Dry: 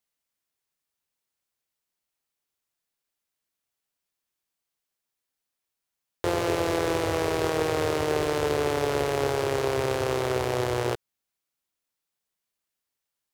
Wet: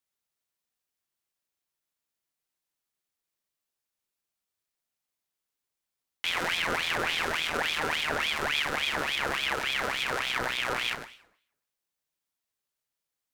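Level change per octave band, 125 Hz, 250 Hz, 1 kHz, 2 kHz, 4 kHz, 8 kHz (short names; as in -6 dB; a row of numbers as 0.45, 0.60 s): -13.5, -11.0, -2.5, +6.0, +7.0, -2.0 dB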